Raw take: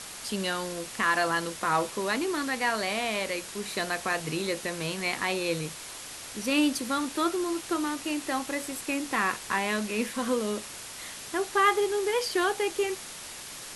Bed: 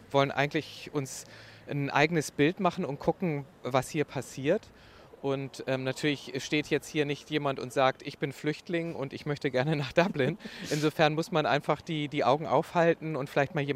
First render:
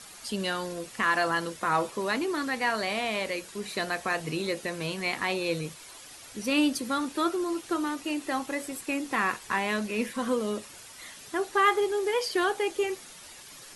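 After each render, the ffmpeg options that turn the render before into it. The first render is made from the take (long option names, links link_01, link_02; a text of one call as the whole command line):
ffmpeg -i in.wav -af "afftdn=noise_reduction=9:noise_floor=-42" out.wav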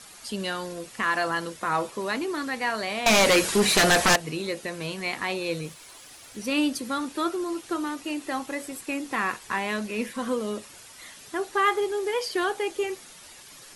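ffmpeg -i in.wav -filter_complex "[0:a]asettb=1/sr,asplit=3[link_01][link_02][link_03];[link_01]atrim=end=3.064[link_04];[link_02]atrim=start=3.06:end=4.16,asetpts=PTS-STARTPTS,afade=type=in:duration=0.004:curve=qsin,afade=type=out:start_time=1.096:duration=0.004:curve=qsin,aeval=exprs='0.188*sin(PI/2*5.01*val(0)/0.188)':channel_layout=same[link_05];[link_03]atrim=start=4.156[link_06];[link_04][link_05]acrossfade=duration=0.004:curve1=hsin:curve2=qsin[link_07];[link_07][link_06]acrossfade=duration=0.004:curve1=qsin:curve2=hsin,asettb=1/sr,asplit=3[link_08][link_09][link_10];[link_08]atrim=end=5.414[link_11];[link_09]atrim=start=5.41:end=6.43,asetpts=PTS-STARTPTS,afade=type=in:duration=0.004:curve=qsin,afade=type=out:start_time=1.016:duration=0.004:curve=qsin,aeval=exprs='val(0)*gte(abs(val(0)),0.00188)':channel_layout=same[link_12];[link_10]atrim=start=6.426[link_13];[link_11][link_12]acrossfade=duration=0.004:curve1=hsin:curve2=qsin[link_14];[link_14][link_13]acrossfade=duration=0.004:curve1=qsin:curve2=hsin" out.wav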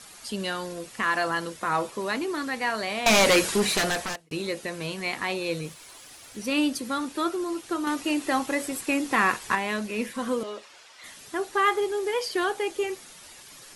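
ffmpeg -i in.wav -filter_complex "[0:a]asettb=1/sr,asplit=3[link_01][link_02][link_03];[link_01]atrim=end=10.434[link_04];[link_02]atrim=start=10.43:end=11.04,asetpts=PTS-STARTPTS,afade=type=in:duration=0.004:curve=qsin,afade=type=out:start_time=0.606:duration=0.004:curve=qsin,acrossover=split=400 6000:gain=0.112 1 0.126[link_05][link_06][link_07];[link_05][link_06][link_07]amix=inputs=3:normalize=0[link_08];[link_03]atrim=start=11.036[link_09];[link_04][link_08]acrossfade=duration=0.004:curve1=hsin:curve2=qsin[link_10];[link_10][link_09]acrossfade=duration=0.004:curve1=qsin:curve2=hsin,asplit=4[link_11][link_12][link_13][link_14];[link_11]atrim=end=4.31,asetpts=PTS-STARTPTS,afade=type=out:start_time=3.38:duration=0.93[link_15];[link_12]atrim=start=4.31:end=7.872,asetpts=PTS-STARTPTS,afade=type=in:duration=0.004:curve=hsin[link_16];[link_13]atrim=start=7.868:end=9.552,asetpts=PTS-STARTPTS,volume=5dB[link_17];[link_14]atrim=start=9.548[link_18];[link_15][link_16]concat=n=2:v=0:a=1[link_19];[link_19][link_17]acrossfade=duration=0.004:curve1=hsin:curve2=hsin[link_20];[link_20][link_18]acrossfade=duration=0.004:curve1=hsin:curve2=hsin" out.wav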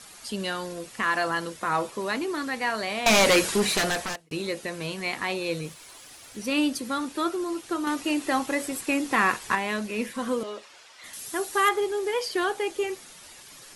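ffmpeg -i in.wav -filter_complex "[0:a]asettb=1/sr,asplit=3[link_01][link_02][link_03];[link_01]atrim=end=11.134[link_04];[link_02]atrim=start=11.13:end=11.69,asetpts=PTS-STARTPTS,afade=type=in:duration=0.004:curve=qsin,afade=type=out:start_time=0.556:duration=0.004:curve=qsin,aemphasis=mode=production:type=50fm[link_05];[link_03]atrim=start=11.686[link_06];[link_04][link_05]acrossfade=duration=0.004:curve1=hsin:curve2=qsin[link_07];[link_07][link_06]acrossfade=duration=0.004:curve1=qsin:curve2=hsin" out.wav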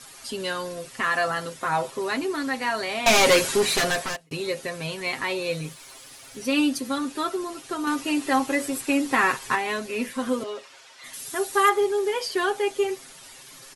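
ffmpeg -i in.wav -af "aecho=1:1:7.5:0.69" out.wav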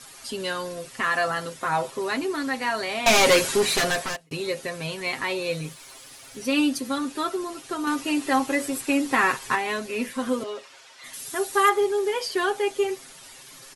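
ffmpeg -i in.wav -af anull out.wav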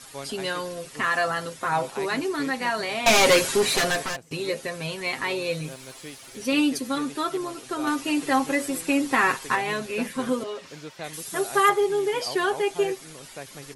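ffmpeg -i in.wav -i bed.wav -filter_complex "[1:a]volume=-13dB[link_01];[0:a][link_01]amix=inputs=2:normalize=0" out.wav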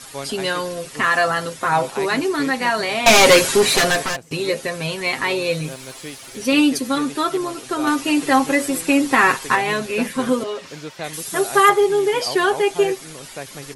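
ffmpeg -i in.wav -af "volume=6.5dB,alimiter=limit=-2dB:level=0:latency=1" out.wav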